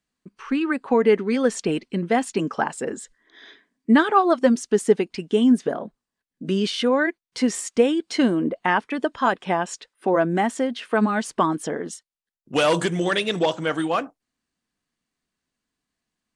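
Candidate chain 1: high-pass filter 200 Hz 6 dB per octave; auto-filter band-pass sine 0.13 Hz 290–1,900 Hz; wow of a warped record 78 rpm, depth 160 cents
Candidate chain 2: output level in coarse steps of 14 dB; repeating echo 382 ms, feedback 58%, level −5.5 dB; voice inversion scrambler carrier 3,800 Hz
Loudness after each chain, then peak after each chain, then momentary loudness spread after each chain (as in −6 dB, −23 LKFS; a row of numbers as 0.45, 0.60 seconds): −30.0, −23.5 LKFS; −9.5, −5.5 dBFS; 18, 14 LU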